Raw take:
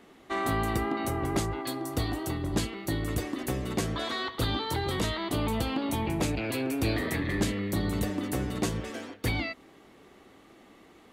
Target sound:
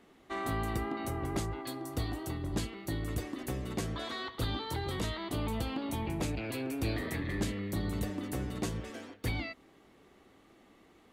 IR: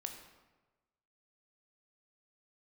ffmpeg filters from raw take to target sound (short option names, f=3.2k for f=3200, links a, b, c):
-af "lowshelf=f=110:g=4.5,volume=-6.5dB"